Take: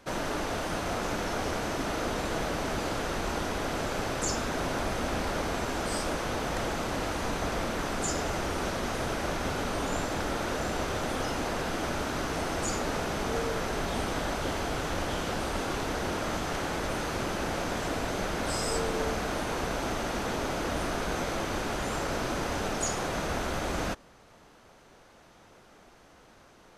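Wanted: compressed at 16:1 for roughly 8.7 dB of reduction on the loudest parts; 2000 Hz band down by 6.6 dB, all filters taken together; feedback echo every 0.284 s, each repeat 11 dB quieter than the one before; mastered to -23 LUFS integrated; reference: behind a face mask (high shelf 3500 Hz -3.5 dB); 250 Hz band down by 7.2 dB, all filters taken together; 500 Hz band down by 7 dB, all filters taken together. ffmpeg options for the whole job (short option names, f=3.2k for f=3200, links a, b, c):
-af "equalizer=f=250:t=o:g=-7.5,equalizer=f=500:t=o:g=-6.5,equalizer=f=2k:t=o:g=-7.5,acompressor=threshold=-38dB:ratio=16,highshelf=f=3.5k:g=-3.5,aecho=1:1:284|568|852:0.282|0.0789|0.0221,volume=20dB"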